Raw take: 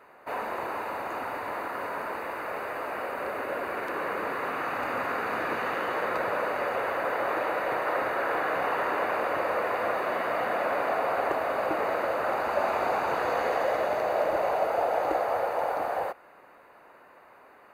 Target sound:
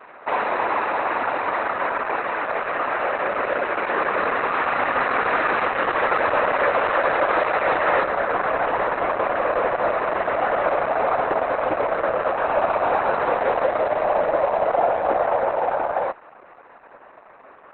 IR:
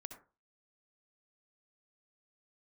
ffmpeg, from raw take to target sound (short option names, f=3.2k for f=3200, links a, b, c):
-filter_complex "[0:a]asetnsamples=n=441:p=0,asendcmd='8.03 lowpass f 1000',asplit=2[a][b];[b]highpass=f=720:p=1,volume=13dB,asoftclip=type=tanh:threshold=-13dB[c];[a][c]amix=inputs=2:normalize=0,lowpass=f=2.7k:p=1,volume=-6dB,volume=7dB" -ar 48000 -c:a libopus -b:a 8k